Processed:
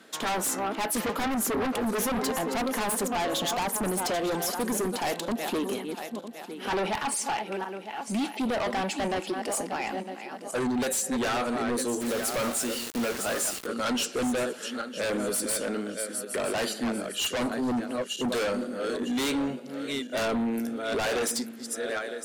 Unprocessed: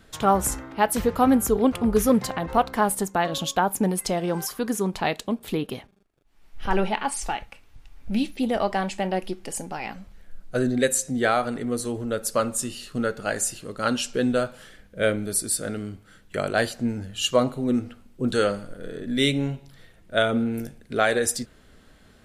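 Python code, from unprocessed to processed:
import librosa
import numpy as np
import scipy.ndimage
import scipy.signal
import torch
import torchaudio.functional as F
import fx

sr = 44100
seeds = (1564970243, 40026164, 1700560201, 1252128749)

y = fx.reverse_delay_fb(x, sr, ms=478, feedback_pct=55, wet_db=-11.5)
y = scipy.signal.sosfilt(scipy.signal.butter(4, 220.0, 'highpass', fs=sr, output='sos'), y)
y = 10.0 ** (-19.0 / 20.0) * np.tanh(y / 10.0 ** (-19.0 / 20.0))
y = fx.quant_dither(y, sr, seeds[0], bits=6, dither='none', at=(12.0, 13.65), fade=0.02)
y = fx.fold_sine(y, sr, drive_db=6, ceiling_db=-18.0)
y = y * librosa.db_to_amplitude(-6.5)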